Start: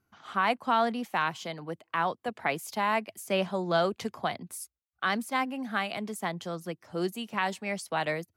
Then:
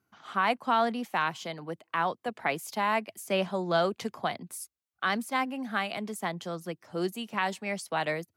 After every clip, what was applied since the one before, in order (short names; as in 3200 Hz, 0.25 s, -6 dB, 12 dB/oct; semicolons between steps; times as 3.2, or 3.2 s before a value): HPF 110 Hz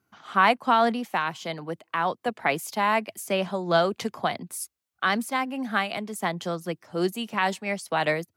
noise-modulated level, depth 60%; gain +8 dB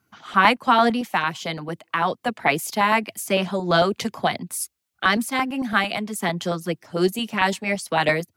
LFO notch saw up 8.9 Hz 290–1700 Hz; gain +6 dB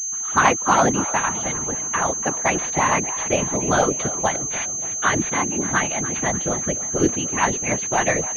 split-band echo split 420 Hz, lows 0.491 s, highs 0.291 s, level -14.5 dB; whisperiser; pulse-width modulation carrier 6300 Hz